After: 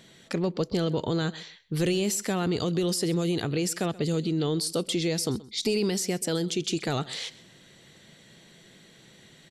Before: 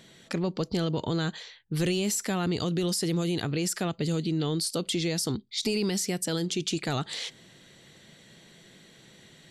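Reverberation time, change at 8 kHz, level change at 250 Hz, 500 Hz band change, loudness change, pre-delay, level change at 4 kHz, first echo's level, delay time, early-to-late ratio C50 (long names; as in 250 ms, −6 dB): no reverb audible, 0.0 dB, +1.0 dB, +3.0 dB, +1.0 dB, no reverb audible, 0.0 dB, −20.0 dB, 129 ms, no reverb audible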